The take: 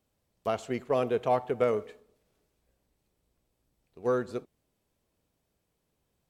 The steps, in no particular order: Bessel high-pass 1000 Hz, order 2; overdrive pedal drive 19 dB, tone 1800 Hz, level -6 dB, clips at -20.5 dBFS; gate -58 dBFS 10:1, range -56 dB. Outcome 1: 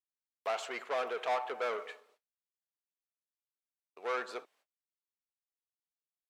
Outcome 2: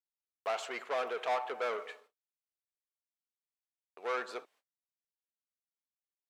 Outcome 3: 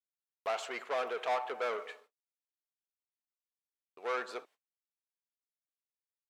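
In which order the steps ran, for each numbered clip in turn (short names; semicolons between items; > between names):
overdrive pedal > gate > Bessel high-pass; gate > overdrive pedal > Bessel high-pass; overdrive pedal > Bessel high-pass > gate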